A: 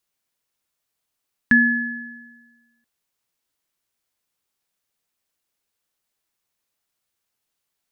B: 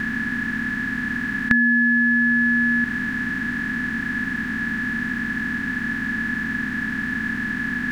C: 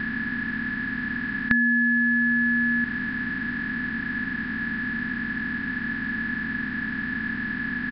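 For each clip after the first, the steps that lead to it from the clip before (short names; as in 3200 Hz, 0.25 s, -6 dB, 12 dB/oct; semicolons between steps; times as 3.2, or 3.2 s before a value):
per-bin compression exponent 0.2; compressor 6:1, threshold -20 dBFS, peak gain reduction 9.5 dB; gain +5 dB
downsampling 11025 Hz; gain -3.5 dB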